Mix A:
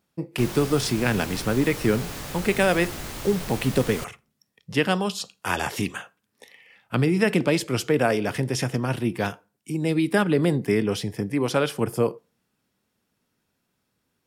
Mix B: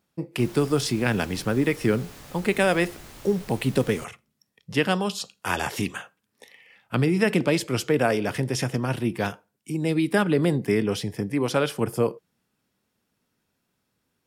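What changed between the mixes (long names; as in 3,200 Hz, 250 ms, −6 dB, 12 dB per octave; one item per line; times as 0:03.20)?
background −8.0 dB
reverb: off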